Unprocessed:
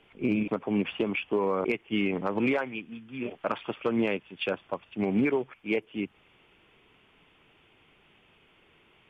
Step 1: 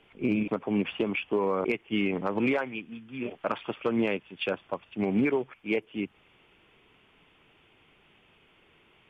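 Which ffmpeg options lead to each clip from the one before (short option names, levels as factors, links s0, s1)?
-af anull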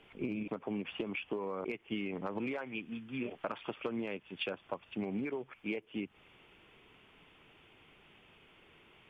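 -af "acompressor=threshold=0.02:ratio=10"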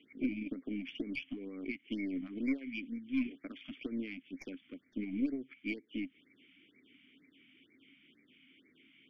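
-filter_complex "[0:a]asplit=3[s0][s1][s2];[s0]bandpass=f=270:t=q:w=8,volume=1[s3];[s1]bandpass=f=2290:t=q:w=8,volume=0.501[s4];[s2]bandpass=f=3010:t=q:w=8,volume=0.355[s5];[s3][s4][s5]amix=inputs=3:normalize=0,aeval=exprs='0.0237*(cos(1*acos(clip(val(0)/0.0237,-1,1)))-cos(1*PI/2))+0.00133*(cos(4*acos(clip(val(0)/0.0237,-1,1)))-cos(4*PI/2))':c=same,afftfilt=real='re*(1-between(b*sr/1024,410*pow(3400/410,0.5+0.5*sin(2*PI*2.1*pts/sr))/1.41,410*pow(3400/410,0.5+0.5*sin(2*PI*2.1*pts/sr))*1.41))':imag='im*(1-between(b*sr/1024,410*pow(3400/410,0.5+0.5*sin(2*PI*2.1*pts/sr))/1.41,410*pow(3400/410,0.5+0.5*sin(2*PI*2.1*pts/sr))*1.41))':win_size=1024:overlap=0.75,volume=2.99"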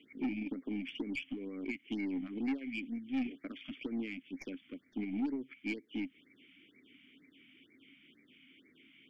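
-af "asoftclip=type=tanh:threshold=0.0299,volume=1.26"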